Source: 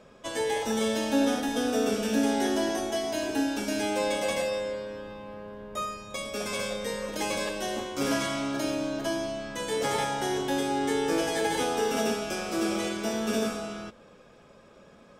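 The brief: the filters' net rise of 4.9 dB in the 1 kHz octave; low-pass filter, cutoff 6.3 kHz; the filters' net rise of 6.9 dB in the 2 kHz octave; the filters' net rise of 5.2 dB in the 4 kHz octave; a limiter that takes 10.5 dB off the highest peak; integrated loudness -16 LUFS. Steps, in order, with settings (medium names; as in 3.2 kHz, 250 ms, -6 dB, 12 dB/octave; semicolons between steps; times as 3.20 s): low-pass 6.3 kHz; peaking EQ 1 kHz +5 dB; peaking EQ 2 kHz +6 dB; peaking EQ 4 kHz +5 dB; trim +14.5 dB; peak limiter -7.5 dBFS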